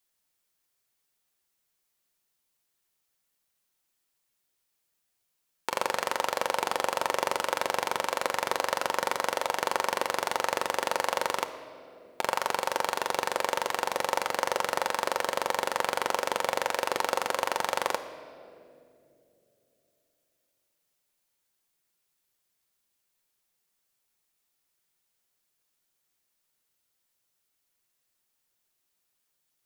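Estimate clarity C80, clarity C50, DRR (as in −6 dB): 12.0 dB, 11.0 dB, 7.0 dB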